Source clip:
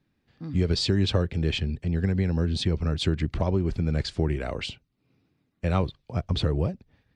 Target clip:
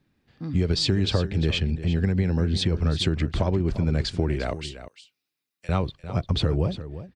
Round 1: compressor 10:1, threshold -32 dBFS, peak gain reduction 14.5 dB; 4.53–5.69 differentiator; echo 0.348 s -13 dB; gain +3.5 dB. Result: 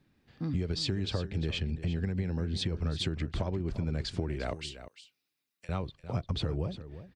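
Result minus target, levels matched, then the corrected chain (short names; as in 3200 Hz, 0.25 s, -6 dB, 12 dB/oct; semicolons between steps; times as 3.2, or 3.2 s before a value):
compressor: peak gain reduction +10 dB
compressor 10:1, threshold -21 dBFS, peak gain reduction 4.5 dB; 4.53–5.69 differentiator; echo 0.348 s -13 dB; gain +3.5 dB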